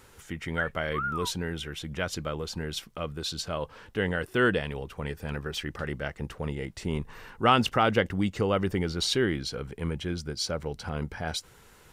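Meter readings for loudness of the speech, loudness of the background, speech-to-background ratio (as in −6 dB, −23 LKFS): −30.0 LKFS, −35.0 LKFS, 5.0 dB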